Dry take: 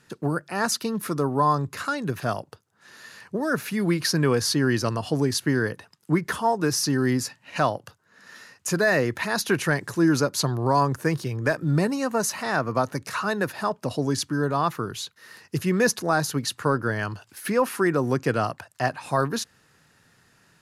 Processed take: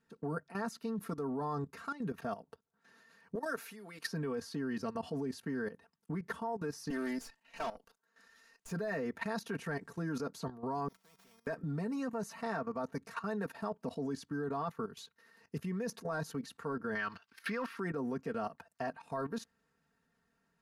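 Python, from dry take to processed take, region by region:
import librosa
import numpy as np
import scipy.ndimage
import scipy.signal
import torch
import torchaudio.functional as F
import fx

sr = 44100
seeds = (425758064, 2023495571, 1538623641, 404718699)

y = fx.chain(x, sr, fx.highpass(hz=320.0, slope=12),
    fx.tilt_eq(slope=2.0), at=(3.35, 4.06))
y = fx.chain(y, sr, fx.highpass(hz=270.0, slope=12),
    fx.high_shelf(hz=2500.0, db=10.5),
    fx.tube_stage(drive_db=23.0, bias=0.55), at=(6.9, 8.71))
y = fx.chain(y, sr, fx.sample_sort(block=8),
    fx.comb_fb(f0_hz=190.0, decay_s=0.48, harmonics='odd', damping=0.0, mix_pct=90),
    fx.spectral_comp(ratio=4.0), at=(10.88, 11.47))
y = fx.chain(y, sr, fx.law_mismatch(coded='A'),
    fx.band_shelf(hz=2400.0, db=12.5, octaves=2.7), at=(16.95, 17.79))
y = fx.high_shelf(y, sr, hz=2100.0, db=-10.5)
y = y + 0.81 * np.pad(y, (int(4.4 * sr / 1000.0), 0))[:len(y)]
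y = fx.level_steps(y, sr, step_db=14)
y = y * librosa.db_to_amplitude(-8.0)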